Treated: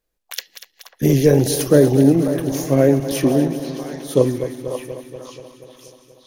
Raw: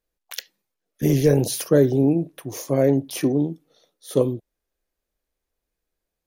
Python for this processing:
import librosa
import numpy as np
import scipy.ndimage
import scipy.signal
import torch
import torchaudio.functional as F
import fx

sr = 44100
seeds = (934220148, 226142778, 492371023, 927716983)

y = fx.reverse_delay_fb(x, sr, ms=120, feedback_pct=81, wet_db=-12.0)
y = fx.echo_stepped(y, sr, ms=540, hz=860.0, octaves=0.7, feedback_pct=70, wet_db=-3.5)
y = y * librosa.db_to_amplitude(4.0)